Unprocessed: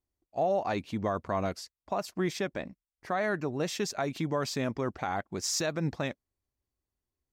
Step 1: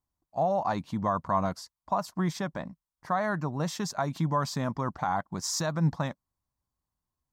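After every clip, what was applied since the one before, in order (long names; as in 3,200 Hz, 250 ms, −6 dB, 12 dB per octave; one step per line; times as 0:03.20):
graphic EQ with 15 bands 160 Hz +8 dB, 400 Hz −8 dB, 1,000 Hz +10 dB, 2,500 Hz −9 dB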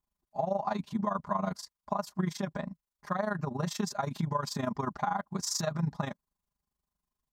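comb filter 4.9 ms, depth 98%
downward compressor, threshold −24 dBFS, peak gain reduction 7 dB
amplitude modulation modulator 25 Hz, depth 65%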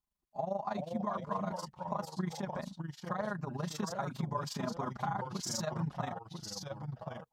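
delay with pitch and tempo change per echo 338 ms, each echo −2 semitones, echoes 2, each echo −6 dB
level −5 dB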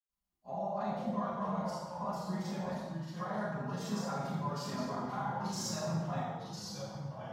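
convolution reverb RT60 1.2 s, pre-delay 89 ms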